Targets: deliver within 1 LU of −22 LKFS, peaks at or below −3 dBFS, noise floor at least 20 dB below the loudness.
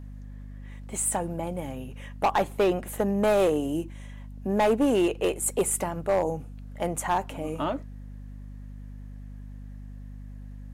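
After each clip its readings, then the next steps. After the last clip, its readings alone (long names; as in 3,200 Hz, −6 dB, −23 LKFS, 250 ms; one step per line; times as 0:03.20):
share of clipped samples 0.8%; peaks flattened at −17.0 dBFS; mains hum 50 Hz; hum harmonics up to 250 Hz; level of the hum −38 dBFS; integrated loudness −27.0 LKFS; sample peak −17.0 dBFS; target loudness −22.0 LKFS
→ clipped peaks rebuilt −17 dBFS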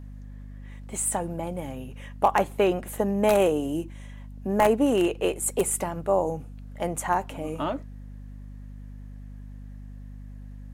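share of clipped samples 0.0%; mains hum 50 Hz; hum harmonics up to 250 Hz; level of the hum −38 dBFS
→ mains-hum notches 50/100/150/200/250 Hz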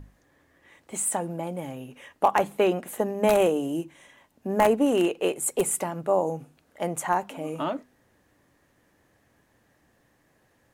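mains hum none found; integrated loudness −26.0 LKFS; sample peak −7.5 dBFS; target loudness −22.0 LKFS
→ level +4 dB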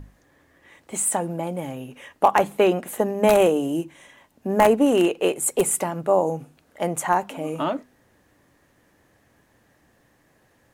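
integrated loudness −22.0 LKFS; sample peak −3.5 dBFS; background noise floor −62 dBFS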